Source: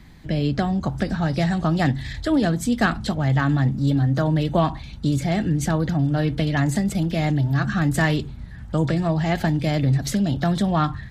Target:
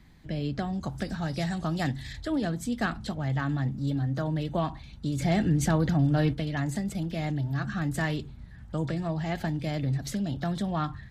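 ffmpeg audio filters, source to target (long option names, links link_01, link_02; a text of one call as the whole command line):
ffmpeg -i in.wav -filter_complex "[0:a]asettb=1/sr,asplit=3[link_01][link_02][link_03];[link_01]atrim=end=0.734[link_04];[link_02]atrim=start=0.73:end=2.17,asetpts=PTS-STARTPTS,afade=type=in:duration=0.004:curve=qsin,afade=type=out:start_time=1.436:duration=0.004:curve=qsin,highshelf=frequency=4600:gain=9[link_05];[link_03]atrim=start=2.166[link_06];[link_04][link_05]acrossfade=duration=0.004:curve1=hsin:curve2=qsin[link_07];[link_07][link_06]acrossfade=duration=0.004:curve1=qsin:curve2=hsin,asplit=3[link_08][link_09][link_10];[link_08]afade=type=out:start_time=5.18:duration=0.02[link_11];[link_09]acontrast=73,afade=type=in:start_time=5.18:duration=0.02,afade=type=out:start_time=6.32:duration=0.02[link_12];[link_10]afade=type=in:start_time=6.32:duration=0.02[link_13];[link_11][link_12][link_13]amix=inputs=3:normalize=0,volume=-9dB" out.wav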